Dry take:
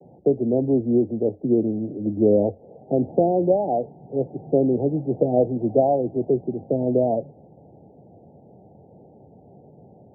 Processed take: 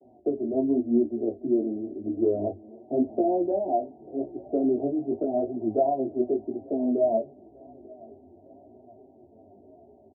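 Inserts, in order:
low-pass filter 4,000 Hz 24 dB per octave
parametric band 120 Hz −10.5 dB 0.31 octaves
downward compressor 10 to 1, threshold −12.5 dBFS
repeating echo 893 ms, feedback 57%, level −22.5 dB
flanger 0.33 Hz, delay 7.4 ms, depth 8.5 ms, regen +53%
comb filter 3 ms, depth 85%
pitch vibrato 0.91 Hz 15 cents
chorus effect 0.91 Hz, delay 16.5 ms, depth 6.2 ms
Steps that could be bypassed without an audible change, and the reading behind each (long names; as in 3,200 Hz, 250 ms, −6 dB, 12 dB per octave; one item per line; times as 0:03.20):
low-pass filter 4,000 Hz: nothing at its input above 910 Hz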